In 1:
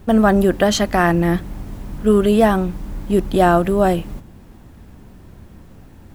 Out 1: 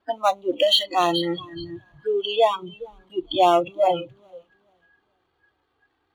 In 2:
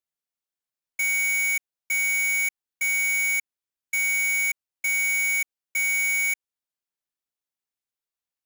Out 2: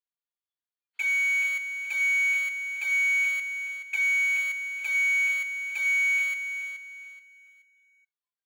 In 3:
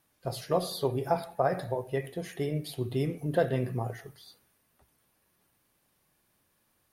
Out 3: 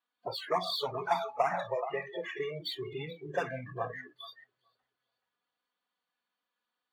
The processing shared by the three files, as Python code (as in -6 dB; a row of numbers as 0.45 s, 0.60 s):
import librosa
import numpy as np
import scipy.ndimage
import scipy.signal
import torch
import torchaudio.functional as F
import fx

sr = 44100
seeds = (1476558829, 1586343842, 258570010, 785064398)

y = scipy.signal.sosfilt(scipy.signal.cheby1(6, 6, 4600.0, 'lowpass', fs=sr, output='sos'), x)
y = fx.power_curve(y, sr, exponent=0.7)
y = fx.env_flanger(y, sr, rest_ms=4.2, full_db=-18.0)
y = fx.highpass(y, sr, hz=730.0, slope=6)
y = fx.echo_feedback(y, sr, ms=427, feedback_pct=31, wet_db=-9)
y = fx.noise_reduce_blind(y, sr, reduce_db=28)
y = y * 10.0 ** (5.5 / 20.0)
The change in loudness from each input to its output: -5.5 LU, -1.5 LU, -3.5 LU